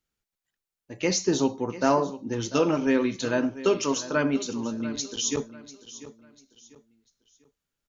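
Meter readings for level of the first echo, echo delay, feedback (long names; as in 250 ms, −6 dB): −15.5 dB, 694 ms, 32%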